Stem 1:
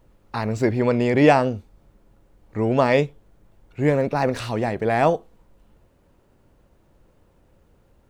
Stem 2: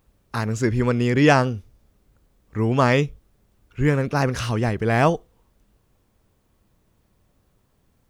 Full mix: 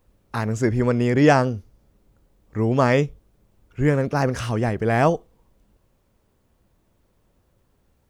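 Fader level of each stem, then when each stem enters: −10.0, −2.5 decibels; 0.00, 0.00 seconds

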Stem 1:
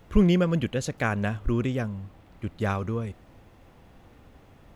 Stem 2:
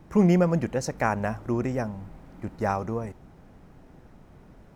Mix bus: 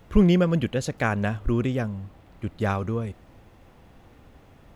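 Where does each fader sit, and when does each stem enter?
+1.0, −16.5 decibels; 0.00, 0.00 seconds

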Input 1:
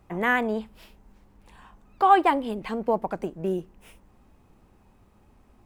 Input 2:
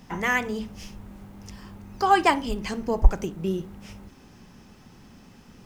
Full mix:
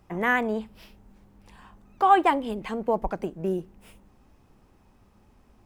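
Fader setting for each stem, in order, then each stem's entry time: −1.0, −19.5 decibels; 0.00, 0.00 seconds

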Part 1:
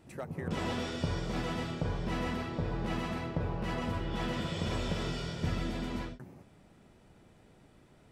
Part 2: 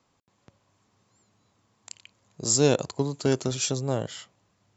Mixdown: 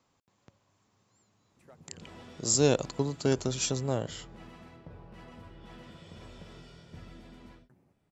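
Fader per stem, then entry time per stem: −15.0, −3.0 decibels; 1.50, 0.00 seconds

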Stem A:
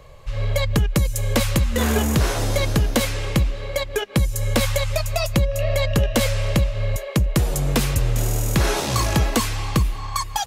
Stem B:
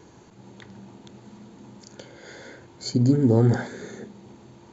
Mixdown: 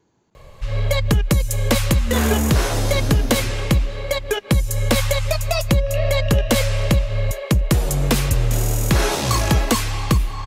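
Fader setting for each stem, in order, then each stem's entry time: +2.0, −14.5 decibels; 0.35, 0.00 seconds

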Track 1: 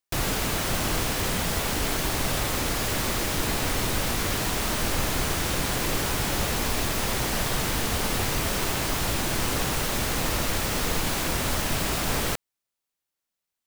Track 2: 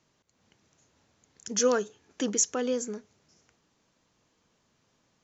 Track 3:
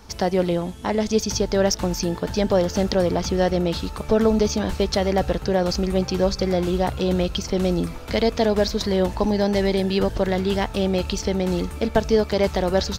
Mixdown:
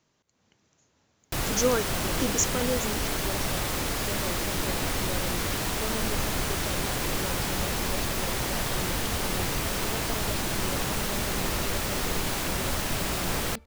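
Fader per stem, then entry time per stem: −2.5, −0.5, −19.0 decibels; 1.20, 0.00, 1.70 seconds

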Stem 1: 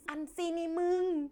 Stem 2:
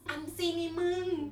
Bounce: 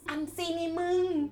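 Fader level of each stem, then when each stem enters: +3.0, −2.0 decibels; 0.00, 0.00 seconds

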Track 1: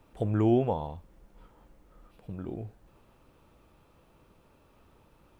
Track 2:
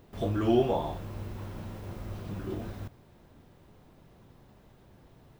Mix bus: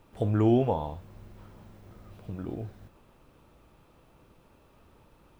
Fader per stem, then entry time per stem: +1.5, −11.5 decibels; 0.00, 0.00 seconds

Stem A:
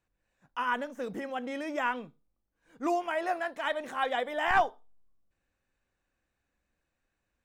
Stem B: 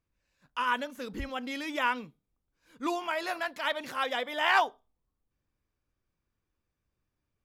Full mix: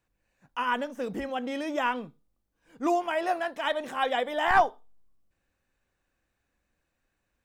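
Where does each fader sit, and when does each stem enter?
+3.0, −11.5 decibels; 0.00, 0.00 seconds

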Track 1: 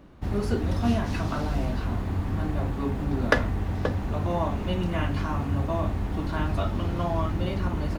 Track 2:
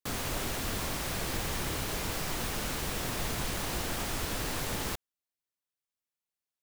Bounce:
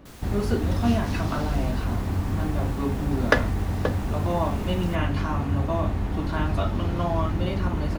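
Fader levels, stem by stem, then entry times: +2.0, −12.5 decibels; 0.00, 0.00 seconds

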